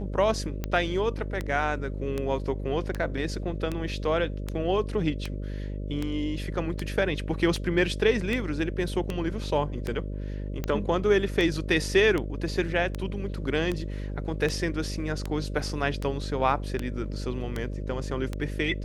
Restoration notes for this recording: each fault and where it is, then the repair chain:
mains buzz 50 Hz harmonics 12 −33 dBFS
scratch tick 78 rpm −16 dBFS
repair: click removal
hum removal 50 Hz, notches 12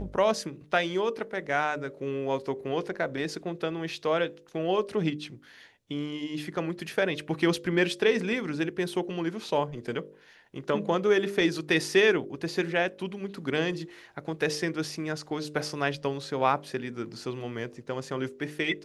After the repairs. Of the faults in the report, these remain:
none of them is left

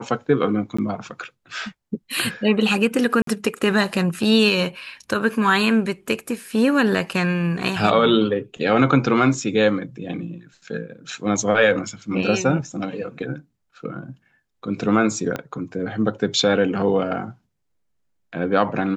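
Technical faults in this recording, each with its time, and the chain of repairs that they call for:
0:00.77–0:00.79: drop-out 15 ms
0:03.22–0:03.27: drop-out 53 ms
0:15.36: click −12 dBFS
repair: click removal
repair the gap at 0:00.77, 15 ms
repair the gap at 0:03.22, 53 ms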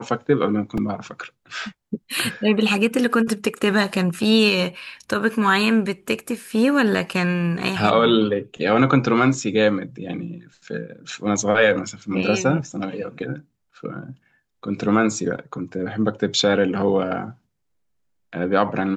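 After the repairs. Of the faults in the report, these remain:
0:15.36: click

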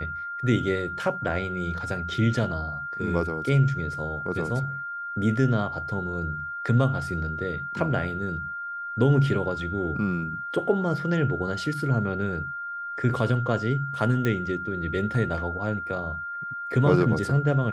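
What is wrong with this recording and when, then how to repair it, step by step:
whistle 1,400 Hz −31 dBFS
0:14.25: click −14 dBFS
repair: click removal
notch filter 1,400 Hz, Q 30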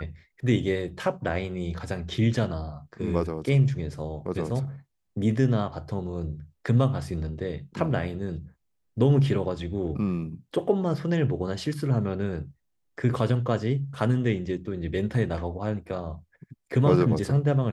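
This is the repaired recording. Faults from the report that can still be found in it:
none of them is left

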